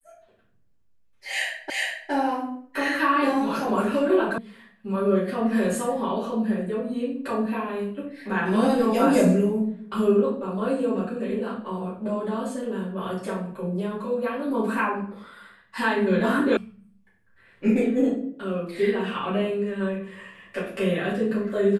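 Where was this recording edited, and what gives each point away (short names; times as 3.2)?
1.7 repeat of the last 0.41 s
4.38 sound cut off
16.57 sound cut off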